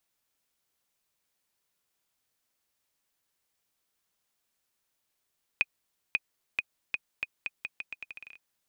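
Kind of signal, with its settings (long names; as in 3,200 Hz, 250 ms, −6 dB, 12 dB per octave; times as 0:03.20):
bouncing ball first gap 0.54 s, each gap 0.81, 2,490 Hz, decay 36 ms −11.5 dBFS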